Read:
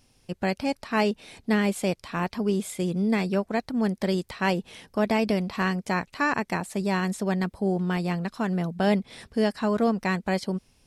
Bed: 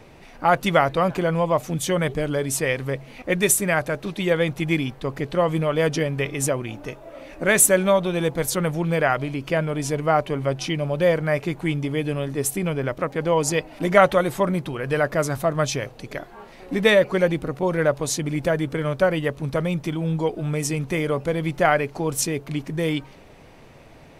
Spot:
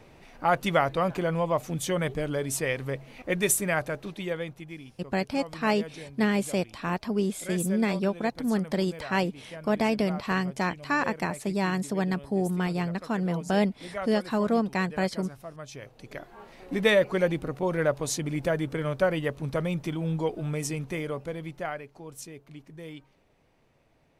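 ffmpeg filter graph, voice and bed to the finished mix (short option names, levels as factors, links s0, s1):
-filter_complex "[0:a]adelay=4700,volume=0.841[s0];[1:a]volume=2.99,afade=t=out:st=3.79:d=0.91:silence=0.188365,afade=t=in:st=15.67:d=0.76:silence=0.177828,afade=t=out:st=20.38:d=1.46:silence=0.211349[s1];[s0][s1]amix=inputs=2:normalize=0"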